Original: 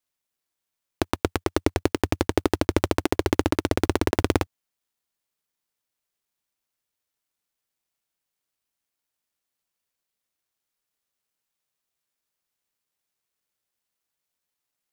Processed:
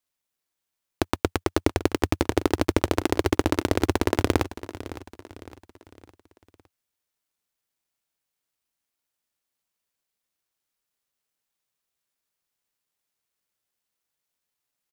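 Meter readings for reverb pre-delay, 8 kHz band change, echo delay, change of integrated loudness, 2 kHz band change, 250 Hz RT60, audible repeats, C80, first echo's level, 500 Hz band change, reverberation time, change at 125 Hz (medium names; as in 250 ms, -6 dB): no reverb, 0.0 dB, 560 ms, 0.0 dB, 0.0 dB, no reverb, 3, no reverb, -15.0 dB, 0.0 dB, no reverb, 0.0 dB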